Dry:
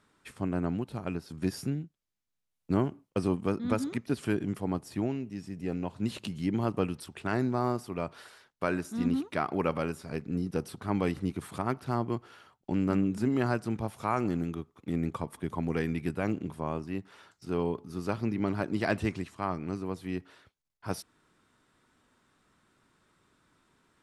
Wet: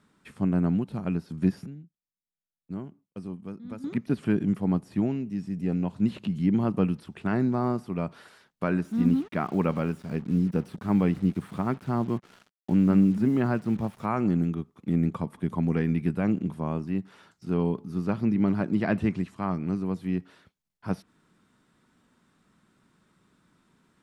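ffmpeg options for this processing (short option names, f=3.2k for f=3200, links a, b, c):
-filter_complex "[0:a]asettb=1/sr,asplit=3[a][b][c];[a]atrim=end=8.854[d];[b]atrim=start=8.85:end=14.06,asetpts=PTS-STARTPTS,afade=t=in:d=0.004:c=qsin,afade=t=out:st=5.206:d=0.004:c=qsin,acrusher=bits=7:mix=0:aa=0.5[e];[c]atrim=start=14.056[f];[d][e]acrossfade=d=0.004:c1=hsin:c2=qsin[g];[g][f]acrossfade=d=0.004:c1=qsin:c2=hsin,asplit=3[h][i][j];[h]atrim=end=1.66,asetpts=PTS-STARTPTS,afade=t=out:st=1.46:d=0.2:c=log:silence=0.188365[k];[i]atrim=start=1.66:end=3.84,asetpts=PTS-STARTPTS,volume=-14.5dB[l];[j]atrim=start=3.84,asetpts=PTS-STARTPTS,afade=t=in:d=0.2:c=log:silence=0.188365[m];[k][l][m]concat=n=3:v=0:a=1,acrossover=split=3300[n][o];[o]acompressor=threshold=-58dB:ratio=4:attack=1:release=60[p];[n][p]amix=inputs=2:normalize=0,equalizer=f=190:t=o:w=0.88:g=10"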